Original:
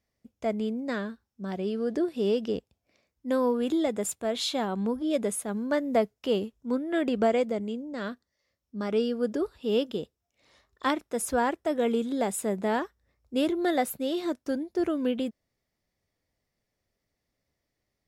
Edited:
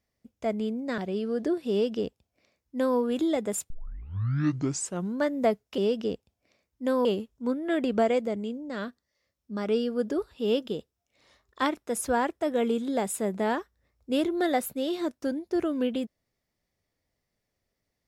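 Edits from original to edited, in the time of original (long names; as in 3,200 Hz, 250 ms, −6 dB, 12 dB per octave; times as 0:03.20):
0:00.98–0:01.49: remove
0:02.22–0:03.49: duplicate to 0:06.29
0:04.21: tape start 1.48 s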